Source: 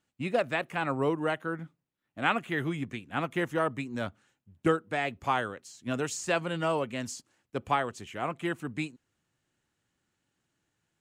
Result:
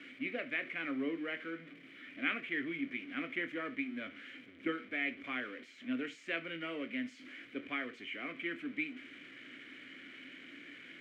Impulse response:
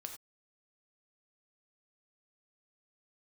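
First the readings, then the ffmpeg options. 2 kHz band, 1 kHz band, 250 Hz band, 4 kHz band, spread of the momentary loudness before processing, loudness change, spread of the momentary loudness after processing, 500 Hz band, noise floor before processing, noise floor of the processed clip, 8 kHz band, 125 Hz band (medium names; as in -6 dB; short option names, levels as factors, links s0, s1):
-3.5 dB, -16.5 dB, -5.5 dB, -5.0 dB, 10 LU, -8.0 dB, 14 LU, -13.5 dB, -83 dBFS, -57 dBFS, under -25 dB, -21.5 dB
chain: -filter_complex "[0:a]aeval=exprs='val(0)+0.5*0.0158*sgn(val(0))':c=same,asplit=3[s0][s1][s2];[s0]bandpass=f=270:t=q:w=8,volume=1[s3];[s1]bandpass=f=2290:t=q:w=8,volume=0.501[s4];[s2]bandpass=f=3010:t=q:w=8,volume=0.355[s5];[s3][s4][s5]amix=inputs=3:normalize=0,acrossover=split=510 2200:gain=0.1 1 0.112[s6][s7][s8];[s6][s7][s8]amix=inputs=3:normalize=0,asplit=2[s9][s10];[1:a]atrim=start_sample=2205,asetrate=74970,aresample=44100,adelay=24[s11];[s10][s11]afir=irnorm=-1:irlink=0,volume=0.841[s12];[s9][s12]amix=inputs=2:normalize=0,volume=4.73"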